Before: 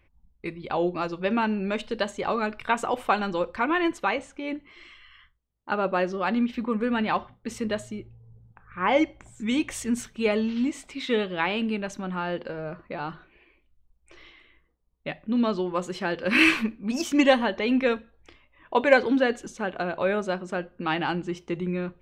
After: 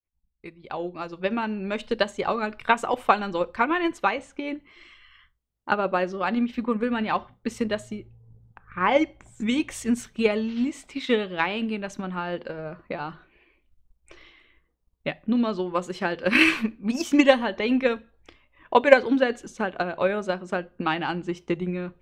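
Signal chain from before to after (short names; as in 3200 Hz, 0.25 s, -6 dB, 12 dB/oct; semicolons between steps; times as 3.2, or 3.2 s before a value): opening faded in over 1.85 s; transient shaper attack +7 dB, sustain 0 dB; gain -1.5 dB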